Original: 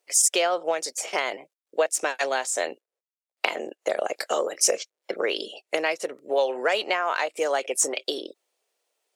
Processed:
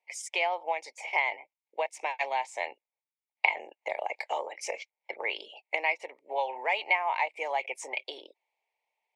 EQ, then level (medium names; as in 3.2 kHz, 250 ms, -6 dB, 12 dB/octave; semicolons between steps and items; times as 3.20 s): two resonant band-passes 1.4 kHz, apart 1.3 oct; +5.0 dB